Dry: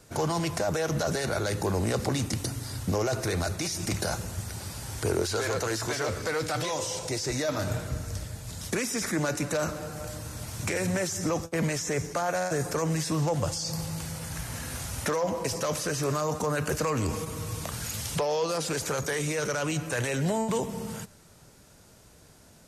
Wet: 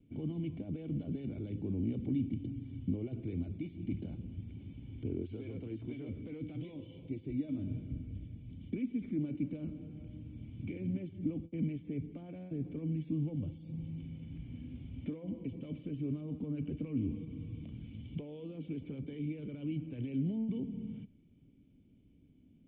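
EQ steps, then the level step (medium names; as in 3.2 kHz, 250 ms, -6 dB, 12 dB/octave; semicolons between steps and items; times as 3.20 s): dynamic bell 2 kHz, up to -3 dB, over -43 dBFS, Q 0.83; cascade formant filter i; bass shelf 390 Hz +9.5 dB; -5.0 dB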